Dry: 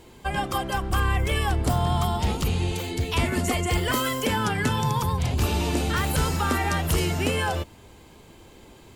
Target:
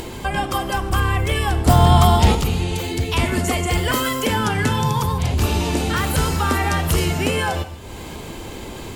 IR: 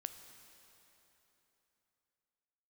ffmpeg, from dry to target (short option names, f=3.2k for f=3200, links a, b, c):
-filter_complex "[0:a]asettb=1/sr,asplit=3[a][b][c];[a]atrim=end=1.684[d];[b]atrim=start=1.68:end=2.35,asetpts=PTS-STARTPTS,afade=t=in:d=0.004:c=qsin,afade=t=out:st=0.666:d=0.004:c=qsin,acontrast=68[e];[c]atrim=start=2.346[f];[d][e]acrossfade=d=0.004:c1=hsin:c2=qsin[g];[g][f]acrossfade=d=0.004:c1=qsin:c2=hsin[h];[1:a]atrim=start_sample=2205,atrim=end_sample=6174,asetrate=37485,aresample=44100[i];[h][i]afir=irnorm=-1:irlink=0,acompressor=mode=upward:threshold=-27dB:ratio=2.5,volume=7dB"